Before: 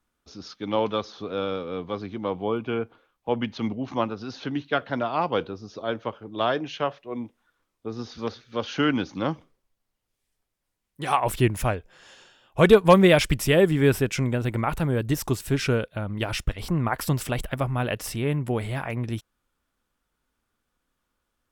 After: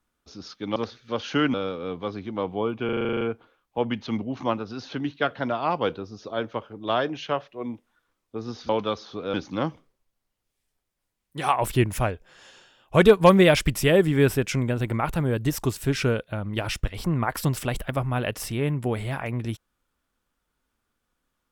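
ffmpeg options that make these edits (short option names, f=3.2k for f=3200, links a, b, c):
-filter_complex "[0:a]asplit=14[a][b][c][d][e][f][g][h][i][j][k][l][m][n];[a]atrim=end=0.762[o];[b]atrim=start=8.198:end=8.982[p];[c]atrim=start=1.408:end=2.762[q];[d]atrim=start=2.718:end=2.762[r];[e]atrim=start=2.718:end=2.762[s];[f]atrim=start=2.718:end=2.762[t];[g]atrim=start=2.718:end=2.762[u];[h]atrim=start=2.718:end=2.762[v];[i]atrim=start=2.718:end=2.762[w];[j]atrim=start=2.718:end=2.762[x];[k]atrim=start=2.718:end=2.762[y];[l]atrim=start=2.718:end=8.202[z];[m]atrim=start=0.758:end=1.412[aa];[n]atrim=start=8.978[ab];[o][p]acrossfade=d=0.004:c1=hsin:c2=hsin[ac];[ac][q]acrossfade=d=0.004:c1=hsin:c2=hsin[ad];[ad][r]acrossfade=d=0.004:c1=hsin:c2=hsin[ae];[ae][s]acrossfade=d=0.004:c1=hsin:c2=hsin[af];[af][t]acrossfade=d=0.004:c1=hsin:c2=hsin[ag];[ag][u]acrossfade=d=0.004:c1=hsin:c2=hsin[ah];[ah][v]acrossfade=d=0.004:c1=hsin:c2=hsin[ai];[ai][w]acrossfade=d=0.004:c1=hsin:c2=hsin[aj];[aj][x]acrossfade=d=0.004:c1=hsin:c2=hsin[ak];[ak][y]acrossfade=d=0.004:c1=hsin:c2=hsin[al];[al][z]acrossfade=d=0.004:c1=hsin:c2=hsin[am];[am][aa]acrossfade=d=0.004:c1=hsin:c2=hsin[an];[an][ab]acrossfade=d=0.004:c1=hsin:c2=hsin"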